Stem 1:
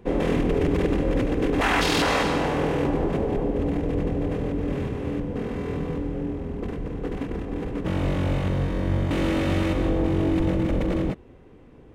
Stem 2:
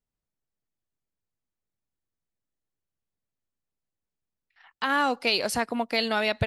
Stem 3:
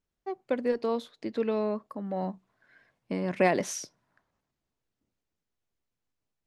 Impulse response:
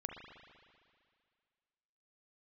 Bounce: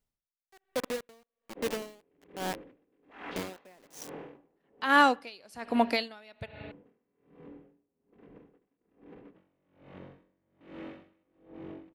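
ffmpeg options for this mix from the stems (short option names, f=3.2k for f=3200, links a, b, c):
-filter_complex "[0:a]acrossover=split=160 3700:gain=0.112 1 0.0891[a][b][c];[a][b][c]amix=inputs=3:normalize=0,adelay=1500,volume=-17.5dB[d];[1:a]volume=3dB,asplit=3[e][f][g];[f]volume=-12.5dB[h];[2:a]highpass=f=200:p=1,highshelf=f=7k:g=7,acrusher=bits=4:mix=0:aa=0.000001,adelay=250,volume=-2.5dB,asplit=2[i][j];[j]volume=-24dB[k];[g]apad=whole_len=592792[l];[d][l]sidechaincompress=threshold=-26dB:ratio=8:attack=16:release=390[m];[3:a]atrim=start_sample=2205[n];[h][k]amix=inputs=2:normalize=0[o];[o][n]afir=irnorm=-1:irlink=0[p];[m][e][i][p]amix=inputs=4:normalize=0,aeval=exprs='val(0)*pow(10,-32*(0.5-0.5*cos(2*PI*1.2*n/s))/20)':c=same"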